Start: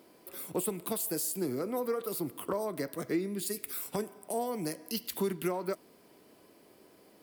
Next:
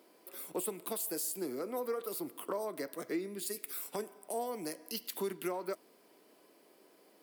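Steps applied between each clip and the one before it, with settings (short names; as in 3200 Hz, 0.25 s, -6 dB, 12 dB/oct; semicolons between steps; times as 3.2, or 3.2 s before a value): HPF 280 Hz 12 dB/oct; gain -3 dB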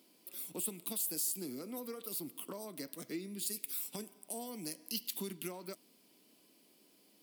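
band shelf 830 Hz -12 dB 2.8 oct; gain +2 dB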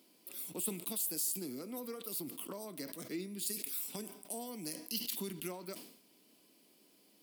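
sustainer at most 82 dB/s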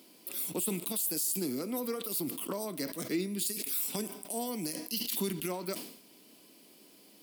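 limiter -30.5 dBFS, peak gain reduction 9 dB; gain +8.5 dB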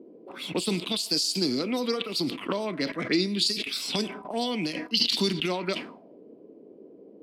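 envelope low-pass 390–4700 Hz up, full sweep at -30.5 dBFS; gain +7 dB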